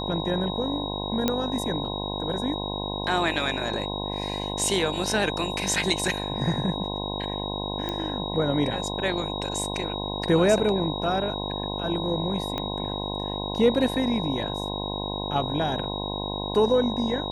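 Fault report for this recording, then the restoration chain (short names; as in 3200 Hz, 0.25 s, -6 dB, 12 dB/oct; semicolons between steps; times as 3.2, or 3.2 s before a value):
buzz 50 Hz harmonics 21 -32 dBFS
tone 3800 Hz -33 dBFS
1.28 pop -8 dBFS
7.89 pop -16 dBFS
12.58 pop -15 dBFS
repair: de-click; notch 3800 Hz, Q 30; de-hum 50 Hz, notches 21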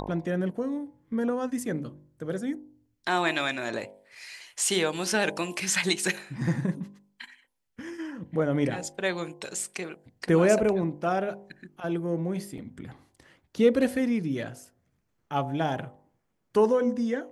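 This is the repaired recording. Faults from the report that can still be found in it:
12.58 pop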